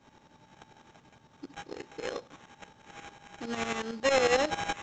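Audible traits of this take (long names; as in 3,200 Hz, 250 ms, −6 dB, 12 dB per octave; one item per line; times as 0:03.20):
a buzz of ramps at a fixed pitch in blocks of 8 samples
tremolo saw up 11 Hz, depth 75%
aliases and images of a low sample rate 4,700 Hz, jitter 0%
mu-law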